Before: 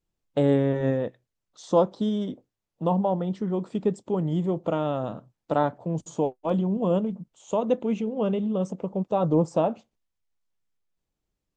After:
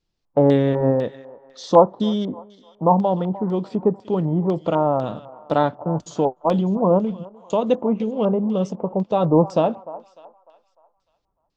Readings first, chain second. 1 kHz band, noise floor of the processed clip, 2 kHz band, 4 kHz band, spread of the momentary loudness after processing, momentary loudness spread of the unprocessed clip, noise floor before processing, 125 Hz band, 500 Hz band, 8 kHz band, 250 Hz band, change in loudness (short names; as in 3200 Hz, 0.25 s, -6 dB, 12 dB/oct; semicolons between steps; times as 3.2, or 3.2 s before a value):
+8.0 dB, -72 dBFS, +4.0 dB, +7.0 dB, 12 LU, 9 LU, -84 dBFS, +4.5 dB, +6.0 dB, n/a, +5.0 dB, +5.5 dB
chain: thinning echo 0.3 s, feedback 51%, high-pass 560 Hz, level -17 dB; LFO low-pass square 2 Hz 940–4800 Hz; gain +4.5 dB